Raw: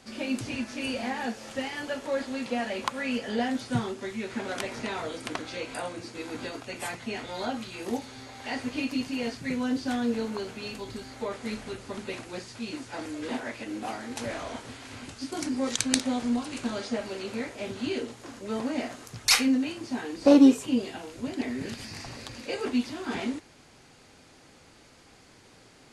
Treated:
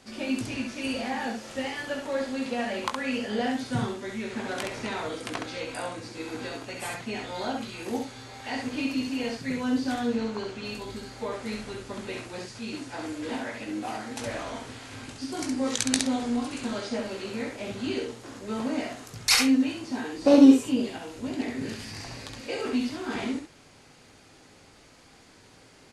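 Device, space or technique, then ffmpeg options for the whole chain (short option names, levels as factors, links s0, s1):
slapback doubling: -filter_complex "[0:a]asettb=1/sr,asplit=3[s0][s1][s2];[s0]atrim=end=10.084[s3];[s1]atrim=start=10.08:end=10.65,asetpts=PTS-STARTPTS,afade=t=in:d=0.004:c=qsin,afade=t=out:st=0.566:d=0.004:c=qsin,lowpass=6900[s4];[s2]atrim=start=10.646[s5];[s3][s4]acrossfade=d=0.004:c1=hsin:c2=qsin[s6];[s6][s5]acrossfade=d=0.004:c1=qsin:c2=hsin,asplit=3[s7][s8][s9];[s8]adelay=19,volume=0.398[s10];[s9]adelay=67,volume=0.631[s11];[s7][s10][s11]amix=inputs=3:normalize=0,volume=0.891"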